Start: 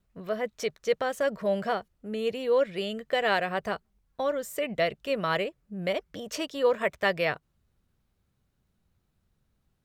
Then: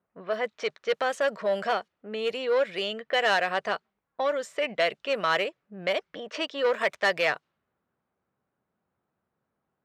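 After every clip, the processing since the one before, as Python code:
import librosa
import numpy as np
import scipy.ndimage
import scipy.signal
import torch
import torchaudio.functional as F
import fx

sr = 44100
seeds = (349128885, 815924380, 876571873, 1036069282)

y = fx.env_lowpass(x, sr, base_hz=1200.0, full_db=-23.5)
y = 10.0 ** (-20.0 / 20.0) * np.tanh(y / 10.0 ** (-20.0 / 20.0))
y = fx.weighting(y, sr, curve='A')
y = F.gain(torch.from_numpy(y), 5.0).numpy()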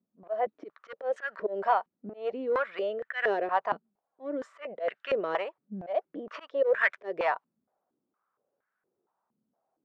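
y = fx.auto_swell(x, sr, attack_ms=154.0)
y = fx.filter_held_bandpass(y, sr, hz=4.3, low_hz=230.0, high_hz=1600.0)
y = F.gain(torch.from_numpy(y), 9.0).numpy()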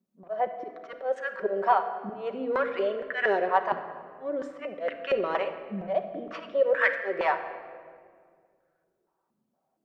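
y = fx.room_shoebox(x, sr, seeds[0], volume_m3=3200.0, walls='mixed', distance_m=1.1)
y = F.gain(torch.from_numpy(y), 1.5).numpy()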